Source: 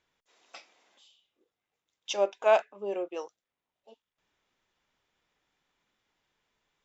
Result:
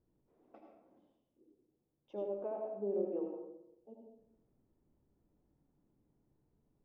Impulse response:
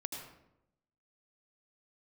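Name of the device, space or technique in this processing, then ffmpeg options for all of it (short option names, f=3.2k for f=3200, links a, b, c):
television next door: -filter_complex "[0:a]acompressor=threshold=-37dB:ratio=4,lowpass=280[a];[1:a]atrim=start_sample=2205[b];[a][b]afir=irnorm=-1:irlink=0,volume=12dB"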